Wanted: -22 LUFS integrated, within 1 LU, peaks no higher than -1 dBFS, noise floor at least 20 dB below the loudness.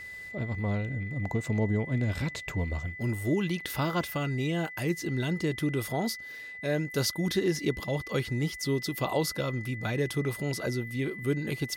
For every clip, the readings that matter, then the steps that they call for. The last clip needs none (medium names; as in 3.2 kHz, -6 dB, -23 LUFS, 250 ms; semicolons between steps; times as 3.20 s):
steady tone 2 kHz; tone level -40 dBFS; loudness -31.0 LUFS; peak level -15.0 dBFS; loudness target -22.0 LUFS
-> band-stop 2 kHz, Q 30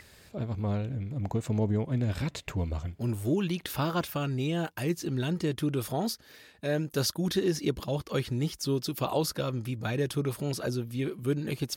steady tone not found; loudness -31.0 LUFS; peak level -14.5 dBFS; loudness target -22.0 LUFS
-> trim +9 dB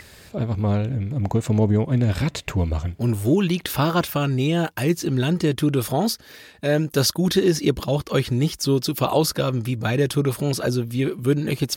loudness -22.0 LUFS; peak level -5.5 dBFS; noise floor -47 dBFS